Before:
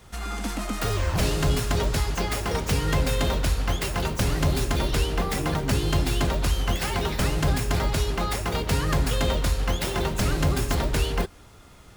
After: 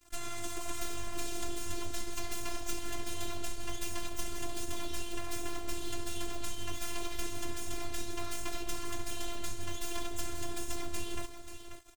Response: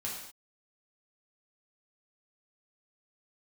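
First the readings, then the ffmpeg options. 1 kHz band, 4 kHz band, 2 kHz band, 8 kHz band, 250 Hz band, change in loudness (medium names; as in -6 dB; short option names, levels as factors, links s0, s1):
-13.5 dB, -11.5 dB, -13.0 dB, -6.5 dB, -14.0 dB, -14.5 dB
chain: -filter_complex "[0:a]acompressor=threshold=0.0316:ratio=6,equalizer=f=7800:t=o:w=0.6:g=9,aeval=exprs='abs(val(0))':c=same,flanger=delay=4:depth=5.5:regen=-29:speed=1.4:shape=triangular,aecho=1:1:2.6:0.32,aecho=1:1:537:0.335,asplit=2[s0][s1];[1:a]atrim=start_sample=2205,afade=t=out:st=0.16:d=0.01,atrim=end_sample=7497[s2];[s1][s2]afir=irnorm=-1:irlink=0,volume=0.355[s3];[s0][s3]amix=inputs=2:normalize=0,aeval=exprs='sgn(val(0))*max(abs(val(0))-0.00398,0)':c=same,afftfilt=real='hypot(re,im)*cos(PI*b)':imag='0':win_size=512:overlap=0.75,volume=1.26"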